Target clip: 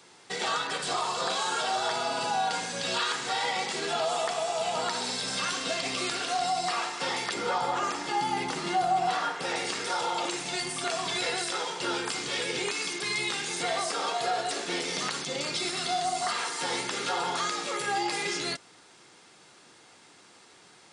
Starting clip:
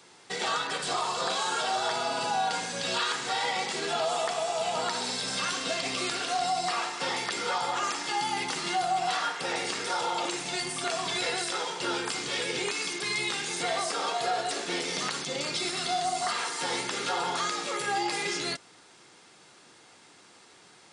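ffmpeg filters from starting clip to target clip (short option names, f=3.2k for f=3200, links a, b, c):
-filter_complex "[0:a]asettb=1/sr,asplit=3[a][b][c];[a]atrim=end=7.344[d];[b]atrim=start=7.34:end=9.42,asetpts=PTS-STARTPTS,afade=t=in:d=0.004:c=qsin,afade=t=out:st=2.076:d=0.004:c=qsin,tiltshelf=f=1.3k:g=4.5[e];[c]atrim=start=9.416[f];[d][e]acrossfade=d=0.004:c1=hsin:c2=qsin[g];[g][f]acrossfade=d=0.004:c1=qsin:c2=hsin"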